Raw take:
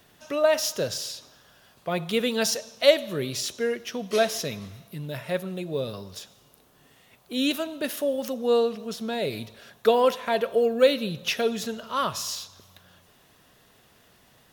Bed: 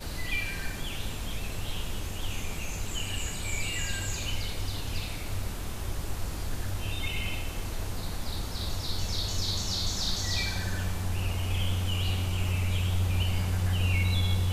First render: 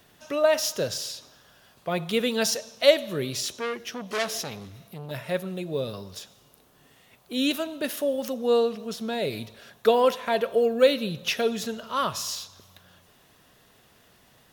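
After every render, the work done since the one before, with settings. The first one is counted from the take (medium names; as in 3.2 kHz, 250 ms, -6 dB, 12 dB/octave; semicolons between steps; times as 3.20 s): 3.53–5.11 s: transformer saturation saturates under 3.2 kHz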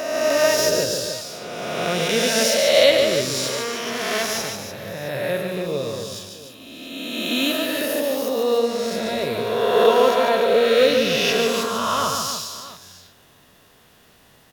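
reverse spectral sustain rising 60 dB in 2.06 s; on a send: multi-tap echo 145/297/670 ms -5/-9/-18 dB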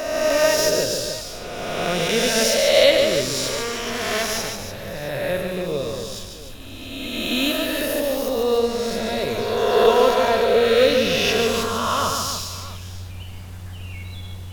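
add bed -8 dB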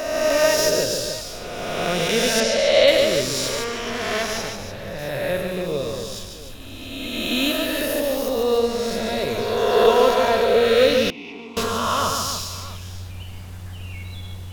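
2.40–2.88 s: distance through air 81 m; 3.64–4.99 s: treble shelf 6.8 kHz -9 dB; 11.10–11.57 s: vowel filter u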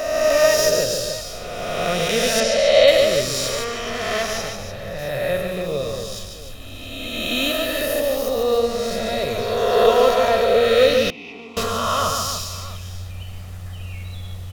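comb 1.6 ms, depth 38%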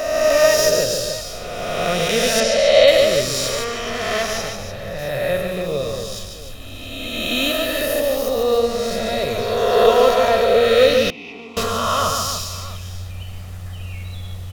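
trim +1.5 dB; peak limiter -1 dBFS, peak gain reduction 1 dB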